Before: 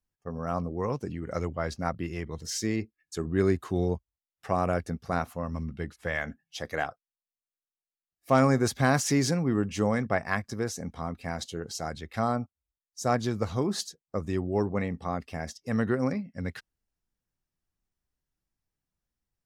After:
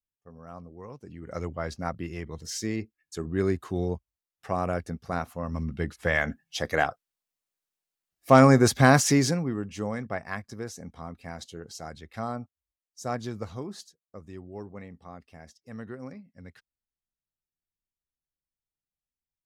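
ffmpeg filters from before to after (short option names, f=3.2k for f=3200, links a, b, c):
-af "volume=6dB,afade=t=in:st=1.01:d=0.46:silence=0.266073,afade=t=in:st=5.32:d=0.67:silence=0.421697,afade=t=out:st=8.93:d=0.63:silence=0.266073,afade=t=out:st=13.36:d=0.5:silence=0.421697"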